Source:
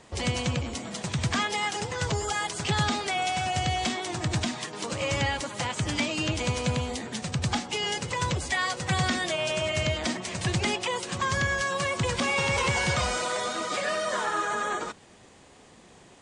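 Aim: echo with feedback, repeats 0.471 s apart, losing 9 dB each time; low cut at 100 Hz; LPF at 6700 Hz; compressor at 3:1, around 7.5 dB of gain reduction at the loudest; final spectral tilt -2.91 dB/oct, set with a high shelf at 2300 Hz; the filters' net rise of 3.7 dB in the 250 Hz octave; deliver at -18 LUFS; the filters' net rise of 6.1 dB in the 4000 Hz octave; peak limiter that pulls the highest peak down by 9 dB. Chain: HPF 100 Hz; LPF 6700 Hz; bell 250 Hz +5 dB; high shelf 2300 Hz +6 dB; bell 4000 Hz +3 dB; compressor 3:1, threshold -30 dBFS; limiter -24.5 dBFS; feedback echo 0.471 s, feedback 35%, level -9 dB; gain +14.5 dB

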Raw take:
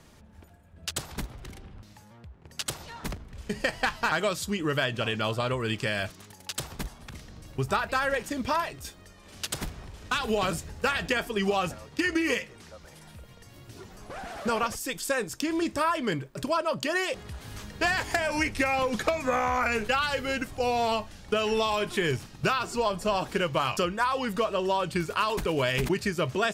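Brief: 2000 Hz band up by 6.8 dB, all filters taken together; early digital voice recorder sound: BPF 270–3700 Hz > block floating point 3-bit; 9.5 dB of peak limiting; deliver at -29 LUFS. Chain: bell 2000 Hz +9 dB; limiter -17 dBFS; BPF 270–3700 Hz; block floating point 3-bit; gain -1 dB

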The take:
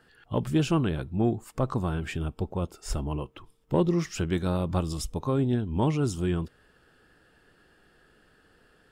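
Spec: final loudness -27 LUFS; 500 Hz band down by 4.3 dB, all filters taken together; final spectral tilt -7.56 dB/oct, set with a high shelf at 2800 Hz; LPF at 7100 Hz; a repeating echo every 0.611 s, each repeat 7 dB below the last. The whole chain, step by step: LPF 7100 Hz; bell 500 Hz -6 dB; high shelf 2800 Hz -3 dB; feedback echo 0.611 s, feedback 45%, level -7 dB; gain +2.5 dB

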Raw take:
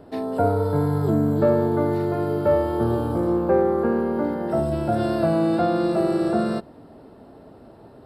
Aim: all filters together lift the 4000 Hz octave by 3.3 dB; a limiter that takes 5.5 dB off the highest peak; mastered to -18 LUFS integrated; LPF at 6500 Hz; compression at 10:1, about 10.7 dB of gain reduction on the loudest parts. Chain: LPF 6500 Hz; bell 4000 Hz +4.5 dB; compressor 10:1, threshold -25 dBFS; gain +13 dB; limiter -9 dBFS

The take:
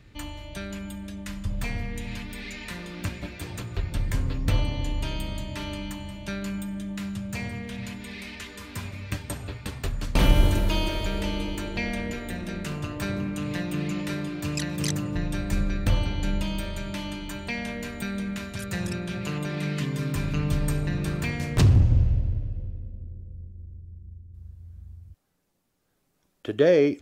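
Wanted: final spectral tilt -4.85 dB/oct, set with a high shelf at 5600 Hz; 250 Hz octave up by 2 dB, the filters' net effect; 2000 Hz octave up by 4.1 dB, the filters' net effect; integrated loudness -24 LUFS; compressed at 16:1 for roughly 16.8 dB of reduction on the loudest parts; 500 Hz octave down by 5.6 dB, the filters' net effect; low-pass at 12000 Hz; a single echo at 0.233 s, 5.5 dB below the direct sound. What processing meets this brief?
LPF 12000 Hz; bell 250 Hz +5 dB; bell 500 Hz -8.5 dB; bell 2000 Hz +4.5 dB; high shelf 5600 Hz +6 dB; compressor 16:1, threshold -28 dBFS; echo 0.233 s -5.5 dB; gain +8.5 dB

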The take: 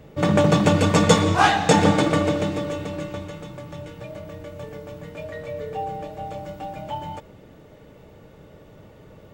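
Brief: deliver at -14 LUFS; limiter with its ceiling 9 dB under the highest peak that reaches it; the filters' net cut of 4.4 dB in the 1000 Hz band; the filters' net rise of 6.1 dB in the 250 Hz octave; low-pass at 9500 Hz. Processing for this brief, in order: LPF 9500 Hz; bell 250 Hz +9 dB; bell 1000 Hz -6.5 dB; gain +8 dB; limiter -2 dBFS

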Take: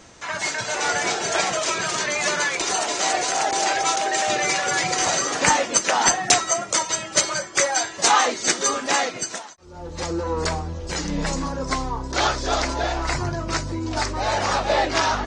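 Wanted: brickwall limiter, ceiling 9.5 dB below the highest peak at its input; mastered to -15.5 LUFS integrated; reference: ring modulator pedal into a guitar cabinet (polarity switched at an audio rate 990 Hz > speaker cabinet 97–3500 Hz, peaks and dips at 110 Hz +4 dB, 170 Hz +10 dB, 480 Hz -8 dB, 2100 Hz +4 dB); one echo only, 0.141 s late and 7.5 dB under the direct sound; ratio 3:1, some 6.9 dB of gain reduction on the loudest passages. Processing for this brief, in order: compressor 3:1, threshold -22 dBFS; limiter -16.5 dBFS; echo 0.141 s -7.5 dB; polarity switched at an audio rate 990 Hz; speaker cabinet 97–3500 Hz, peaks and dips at 110 Hz +4 dB, 170 Hz +10 dB, 480 Hz -8 dB, 2100 Hz +4 dB; gain +10.5 dB

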